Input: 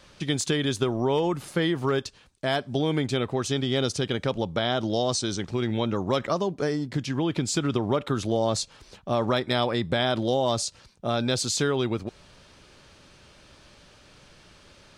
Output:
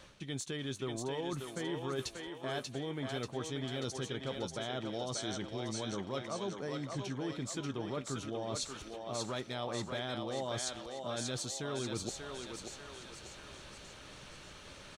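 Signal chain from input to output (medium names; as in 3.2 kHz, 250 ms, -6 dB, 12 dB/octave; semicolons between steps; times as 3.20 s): band-stop 4.9 kHz, Q 8.6; reverse; compression 5:1, threshold -38 dBFS, peak gain reduction 17 dB; reverse; doubling 15 ms -13 dB; thinning echo 587 ms, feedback 55%, high-pass 440 Hz, level -3 dB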